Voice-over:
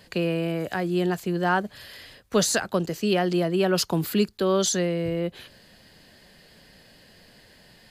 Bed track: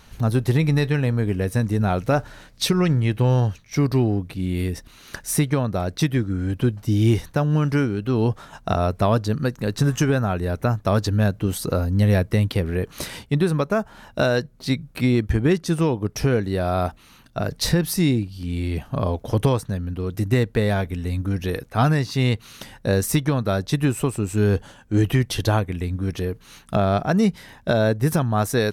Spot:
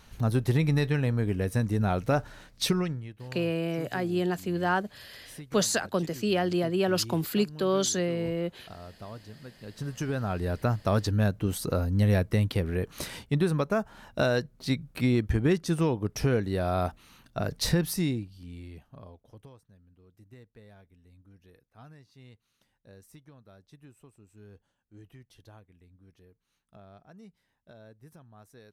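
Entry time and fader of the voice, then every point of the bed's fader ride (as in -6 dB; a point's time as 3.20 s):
3.20 s, -3.5 dB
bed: 2.73 s -5.5 dB
3.14 s -24 dB
9.42 s -24 dB
10.41 s -5.5 dB
17.84 s -5.5 dB
19.51 s -32.5 dB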